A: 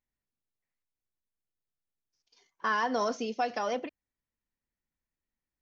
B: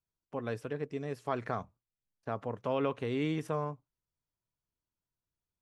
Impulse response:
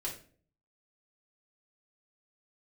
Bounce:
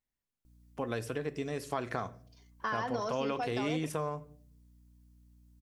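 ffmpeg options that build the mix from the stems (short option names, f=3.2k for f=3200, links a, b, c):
-filter_complex "[0:a]volume=-1.5dB[a];[1:a]highshelf=f=3.6k:g=11.5,aeval=exprs='val(0)+0.000631*(sin(2*PI*60*n/s)+sin(2*PI*2*60*n/s)/2+sin(2*PI*3*60*n/s)/3+sin(2*PI*4*60*n/s)/4+sin(2*PI*5*60*n/s)/5)':c=same,adelay=450,volume=2.5dB,asplit=2[b][c];[c]volume=-10.5dB[d];[2:a]atrim=start_sample=2205[e];[d][e]afir=irnorm=-1:irlink=0[f];[a][b][f]amix=inputs=3:normalize=0,acompressor=threshold=-32dB:ratio=2.5"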